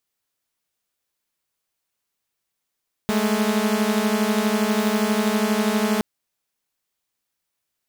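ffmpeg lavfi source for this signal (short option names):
-f lavfi -i "aevalsrc='0.112*((2*mod(207.65*t,1)-1)+(2*mod(220*t,1)-1))':d=2.92:s=44100"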